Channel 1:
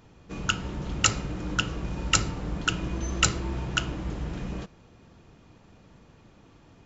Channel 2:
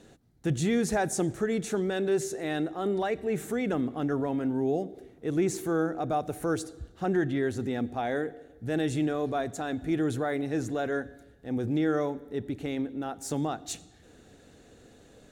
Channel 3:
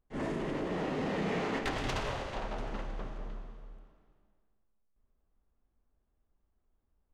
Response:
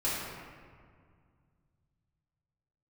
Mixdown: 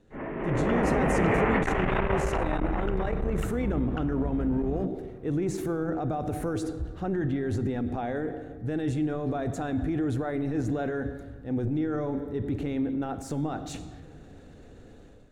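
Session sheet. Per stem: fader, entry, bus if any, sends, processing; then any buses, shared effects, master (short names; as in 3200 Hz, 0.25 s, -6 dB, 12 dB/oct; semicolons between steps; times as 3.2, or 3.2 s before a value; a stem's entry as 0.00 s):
-14.0 dB, 0.20 s, no send, LPF 1400 Hz 12 dB/oct; compressor, threshold -31 dBFS, peak gain reduction 9.5 dB
-9.0 dB, 0.00 s, send -20 dB, transient shaper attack -3 dB, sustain +6 dB; limiter -25.5 dBFS, peak gain reduction 9 dB; high shelf 3300 Hz -11 dB
-0.5 dB, 0.00 s, no send, steep low-pass 2500 Hz 36 dB/oct; low shelf 200 Hz -11 dB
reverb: on, RT60 2.0 s, pre-delay 3 ms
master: low shelf 97 Hz +10.5 dB; AGC gain up to 11.5 dB; core saturation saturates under 150 Hz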